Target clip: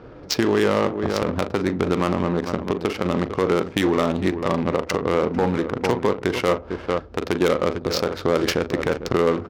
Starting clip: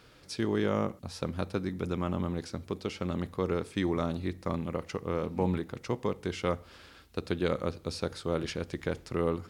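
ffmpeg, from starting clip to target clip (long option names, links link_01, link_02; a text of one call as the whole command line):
ffmpeg -i in.wav -af "lowpass=frequency=6200:width_type=q:width=2.6,aecho=1:1:40|43|448:0.266|0.106|0.211,adynamicsmooth=sensitivity=6.5:basefreq=590,volume=20dB,asoftclip=hard,volume=-20dB,acompressor=threshold=-36dB:ratio=6,bass=frequency=250:gain=-8,treble=frequency=4000:gain=0,alimiter=level_in=28.5dB:limit=-1dB:release=50:level=0:latency=1,volume=-6dB" out.wav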